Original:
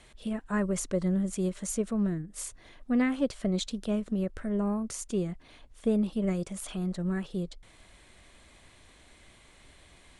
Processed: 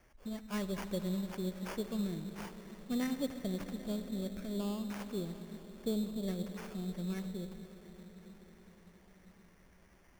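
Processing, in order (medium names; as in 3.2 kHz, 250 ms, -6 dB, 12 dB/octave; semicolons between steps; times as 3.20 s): peaking EQ 3.5 kHz -6.5 dB 0.77 oct; on a send at -8 dB: reverberation RT60 6.0 s, pre-delay 50 ms; on the sum: sample-rate reducer 3.9 kHz, jitter 0%; trim -8.5 dB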